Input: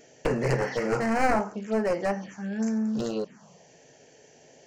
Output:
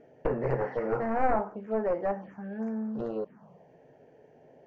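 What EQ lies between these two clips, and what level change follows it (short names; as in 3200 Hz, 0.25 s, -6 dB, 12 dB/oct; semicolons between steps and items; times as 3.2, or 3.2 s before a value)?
LPF 1100 Hz 12 dB/oct; dynamic EQ 180 Hz, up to -7 dB, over -41 dBFS, Q 0.73; 0.0 dB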